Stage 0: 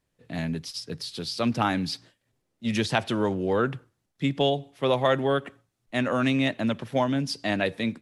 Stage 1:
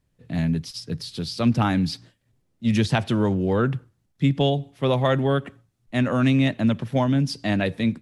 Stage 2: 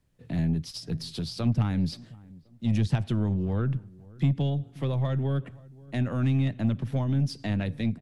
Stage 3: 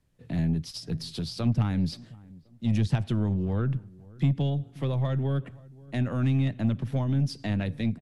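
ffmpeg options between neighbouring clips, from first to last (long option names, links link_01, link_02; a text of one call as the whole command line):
ffmpeg -i in.wav -af "bass=frequency=250:gain=10,treble=frequency=4000:gain=0" out.wav
ffmpeg -i in.wav -filter_complex "[0:a]acrossover=split=180[link_01][link_02];[link_02]acompressor=threshold=-35dB:ratio=5[link_03];[link_01][link_03]amix=inputs=2:normalize=0,aeval=exprs='0.2*(cos(1*acos(clip(val(0)/0.2,-1,1)))-cos(1*PI/2))+0.01*(cos(6*acos(clip(val(0)/0.2,-1,1)))-cos(6*PI/2))':channel_layout=same,asplit=2[link_04][link_05];[link_05]adelay=529,lowpass=frequency=960:poles=1,volume=-22dB,asplit=2[link_06][link_07];[link_07]adelay=529,lowpass=frequency=960:poles=1,volume=0.37,asplit=2[link_08][link_09];[link_09]adelay=529,lowpass=frequency=960:poles=1,volume=0.37[link_10];[link_04][link_06][link_08][link_10]amix=inputs=4:normalize=0" out.wav
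ffmpeg -i in.wav -af "aresample=32000,aresample=44100" out.wav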